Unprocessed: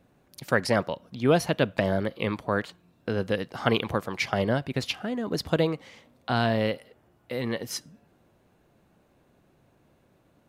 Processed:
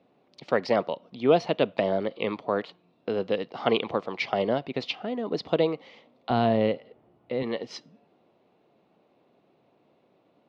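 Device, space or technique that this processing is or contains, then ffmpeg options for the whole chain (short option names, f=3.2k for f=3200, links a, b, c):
kitchen radio: -filter_complex "[0:a]highpass=220,equalizer=f=440:t=q:w=4:g=3,equalizer=f=710:t=q:w=4:g=3,equalizer=f=1.6k:t=q:w=4:g=-10,lowpass=f=4.4k:w=0.5412,lowpass=f=4.4k:w=1.3066,asettb=1/sr,asplit=3[a][b][c];[a]atrim=end=6.304[d];[b]atrim=start=6.3:end=7.43,asetpts=PTS-STARTPTS,afade=t=in:d=0.004:c=qsin,afade=t=out:st=1.126:d=0.004:c=qsin,aemphasis=mode=reproduction:type=bsi[e];[c]atrim=start=7.426[f];[d][e]acrossfade=d=0.004:c1=hsin:c2=qsin[g];[g][f]acrossfade=d=0.004:c1=qsin:c2=hsin"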